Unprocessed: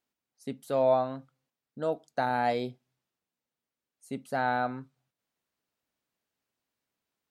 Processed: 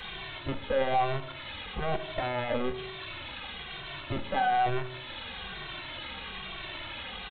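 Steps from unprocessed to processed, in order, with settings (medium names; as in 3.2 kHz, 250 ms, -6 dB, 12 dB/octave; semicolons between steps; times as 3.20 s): zero-crossing glitches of -23.5 dBFS; 2.27–2.67 s: low-pass 1.1 kHz 12 dB/octave; comb 5.2 ms, depth 80%; companded quantiser 2-bit; LPC vocoder at 8 kHz pitch kept; reverberation RT60 0.95 s, pre-delay 3 ms, DRR 7.5 dB; endless flanger 2.1 ms -1.1 Hz; trim +1.5 dB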